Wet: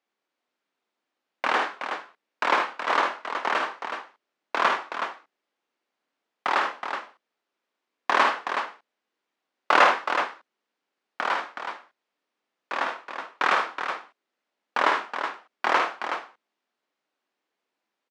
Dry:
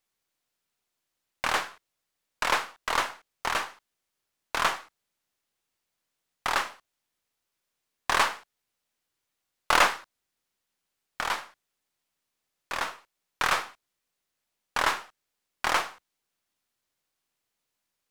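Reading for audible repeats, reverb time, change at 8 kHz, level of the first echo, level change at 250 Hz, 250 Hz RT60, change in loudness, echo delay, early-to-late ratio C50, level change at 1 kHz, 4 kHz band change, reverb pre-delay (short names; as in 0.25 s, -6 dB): 2, none, -9.0 dB, -5.5 dB, +6.0 dB, none, +2.5 dB, 53 ms, none, +5.5 dB, -0.5 dB, none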